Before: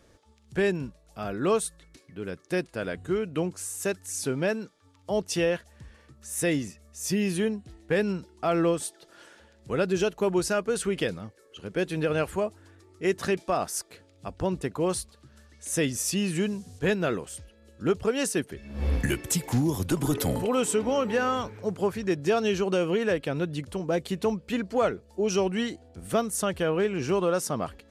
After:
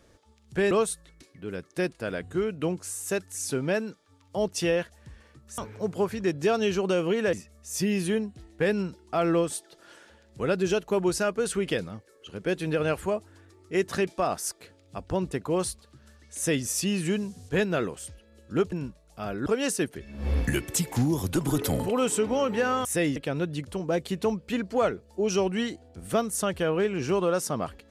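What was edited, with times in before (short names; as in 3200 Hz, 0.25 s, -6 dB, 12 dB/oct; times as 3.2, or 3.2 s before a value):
0.71–1.45 move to 18.02
6.32–6.63 swap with 21.41–23.16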